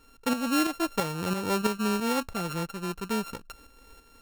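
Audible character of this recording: a buzz of ramps at a fixed pitch in blocks of 32 samples; tremolo saw up 3 Hz, depth 60%

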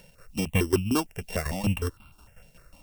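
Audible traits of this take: a buzz of ramps at a fixed pitch in blocks of 16 samples; tremolo saw down 5.5 Hz, depth 80%; a quantiser's noise floor 12-bit, dither triangular; notches that jump at a steady rate 6.6 Hz 320–1800 Hz

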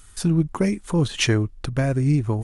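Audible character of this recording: noise floor -47 dBFS; spectral tilt -6.0 dB/oct

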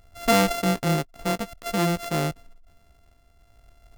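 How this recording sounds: a buzz of ramps at a fixed pitch in blocks of 64 samples; tremolo triangle 0.54 Hz, depth 50%

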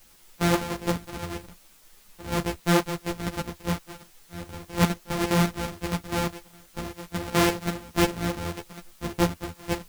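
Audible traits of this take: a buzz of ramps at a fixed pitch in blocks of 256 samples; chopped level 4.9 Hz, depth 65%, duty 70%; a quantiser's noise floor 10-bit, dither triangular; a shimmering, thickened sound

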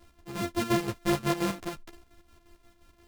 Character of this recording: a buzz of ramps at a fixed pitch in blocks of 128 samples; chopped level 5.7 Hz, depth 60%, duty 55%; a shimmering, thickened sound

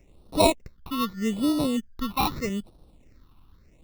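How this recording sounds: aliases and images of a low sample rate 1600 Hz, jitter 0%; phasing stages 6, 0.81 Hz, lowest notch 520–2100 Hz

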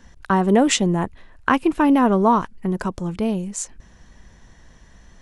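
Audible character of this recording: noise floor -50 dBFS; spectral tilt -5.0 dB/oct

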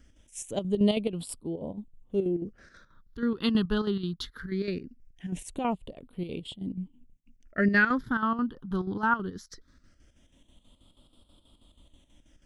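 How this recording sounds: chopped level 6.2 Hz, depth 60%, duty 65%; phasing stages 6, 0.2 Hz, lowest notch 580–1700 Hz

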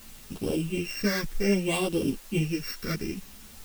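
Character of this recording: a buzz of ramps at a fixed pitch in blocks of 16 samples; phasing stages 6, 0.62 Hz, lowest notch 760–2000 Hz; a quantiser's noise floor 8-bit, dither triangular; a shimmering, thickened sound

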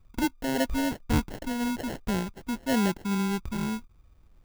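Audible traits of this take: phasing stages 12, 0.5 Hz, lowest notch 540–1100 Hz; aliases and images of a low sample rate 1200 Hz, jitter 0%

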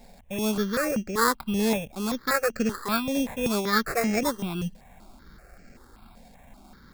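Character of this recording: aliases and images of a low sample rate 3000 Hz, jitter 0%; notches that jump at a steady rate 5.2 Hz 340–3600 Hz

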